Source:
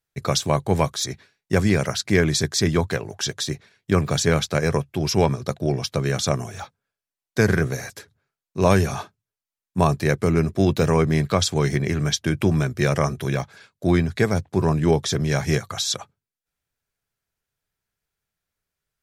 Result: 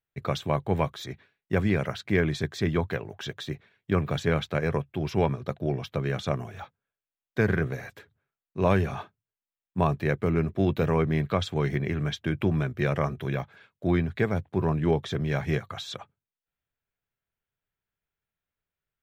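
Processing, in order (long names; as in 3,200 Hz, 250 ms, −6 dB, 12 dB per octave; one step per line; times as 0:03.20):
flat-topped bell 7,400 Hz −15.5 dB
level −5.5 dB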